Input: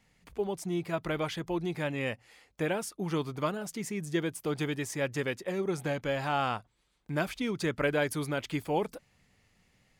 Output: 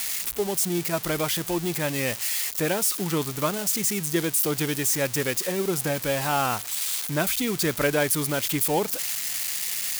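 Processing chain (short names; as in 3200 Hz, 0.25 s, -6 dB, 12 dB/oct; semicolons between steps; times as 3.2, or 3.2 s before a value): switching spikes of -23.5 dBFS; gain +5 dB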